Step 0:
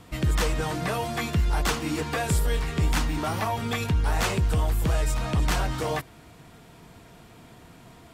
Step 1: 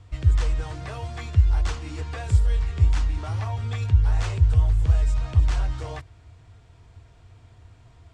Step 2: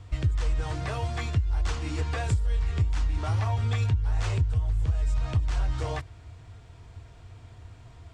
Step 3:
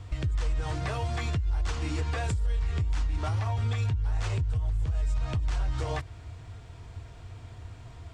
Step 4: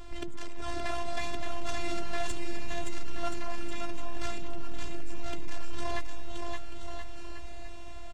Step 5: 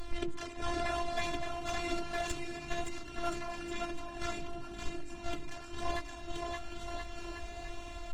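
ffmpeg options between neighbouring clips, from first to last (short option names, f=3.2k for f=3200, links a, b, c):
-af "lowpass=f=8.1k:w=0.5412,lowpass=f=8.1k:w=1.3066,lowshelf=f=130:t=q:w=3:g=11,volume=-8.5dB"
-af "acompressor=threshold=-24dB:ratio=16,volume=3dB"
-af "alimiter=level_in=0.5dB:limit=-24dB:level=0:latency=1:release=152,volume=-0.5dB,volume=3dB"
-filter_complex "[0:a]asoftclip=type=tanh:threshold=-30.5dB,afftfilt=real='hypot(re,im)*cos(PI*b)':imag='0':win_size=512:overlap=0.75,asplit=2[a][b];[b]aecho=0:1:570|1026|1391|1683|1916:0.631|0.398|0.251|0.158|0.1[c];[a][c]amix=inputs=2:normalize=0,volume=6.5dB"
-af "aeval=exprs='0.2*(cos(1*acos(clip(val(0)/0.2,-1,1)))-cos(1*PI/2))+0.0126*(cos(5*acos(clip(val(0)/0.2,-1,1)))-cos(5*PI/2))':c=same,flanger=delay=3.1:depth=4.4:regen=73:speed=1:shape=sinusoidal,volume=5.5dB" -ar 48000 -c:a libopus -b:a 20k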